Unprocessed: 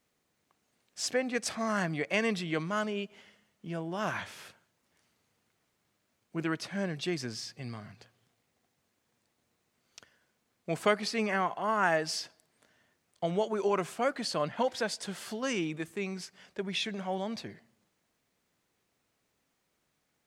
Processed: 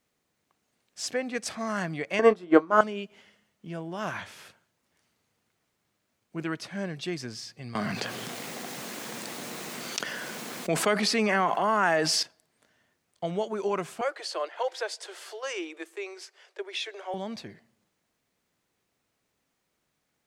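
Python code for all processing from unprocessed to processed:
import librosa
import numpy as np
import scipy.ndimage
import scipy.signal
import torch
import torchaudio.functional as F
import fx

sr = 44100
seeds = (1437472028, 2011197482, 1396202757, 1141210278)

y = fx.chain(x, sr, fx.band_shelf(hz=620.0, db=16.0, octaves=2.9),
    fx.doubler(ms=28.0, db=-10.0),
    fx.upward_expand(threshold_db=-25.0, expansion=2.5), at=(2.19, 2.81))
y = fx.chain(y, sr, fx.highpass(hz=160.0, slope=24),
    fx.env_flatten(amount_pct=70), at=(7.75, 12.23))
y = fx.chain(y, sr, fx.steep_highpass(hz=330.0, slope=96),
    fx.high_shelf(hz=12000.0, db=-7.0), at=(14.01, 17.14))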